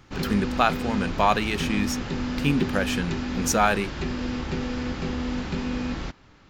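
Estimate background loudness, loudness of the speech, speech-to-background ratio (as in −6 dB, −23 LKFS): −30.0 LKFS, −25.5 LKFS, 4.5 dB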